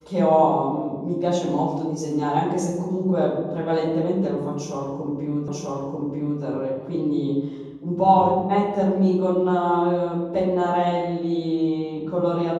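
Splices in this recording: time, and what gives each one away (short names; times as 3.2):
5.48 repeat of the last 0.94 s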